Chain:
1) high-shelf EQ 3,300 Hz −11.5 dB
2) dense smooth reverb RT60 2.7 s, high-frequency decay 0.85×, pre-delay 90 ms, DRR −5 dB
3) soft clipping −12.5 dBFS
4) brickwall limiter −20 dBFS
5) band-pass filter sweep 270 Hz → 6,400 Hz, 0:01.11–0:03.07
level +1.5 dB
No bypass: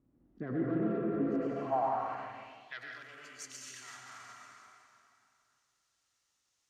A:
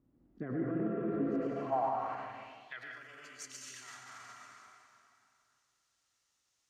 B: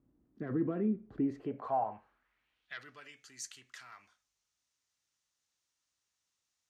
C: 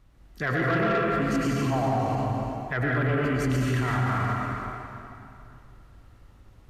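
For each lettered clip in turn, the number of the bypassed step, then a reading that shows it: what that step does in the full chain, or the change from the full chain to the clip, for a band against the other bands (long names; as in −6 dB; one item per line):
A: 3, distortion level −17 dB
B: 2, change in momentary loudness spread +2 LU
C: 5, 125 Hz band +10.5 dB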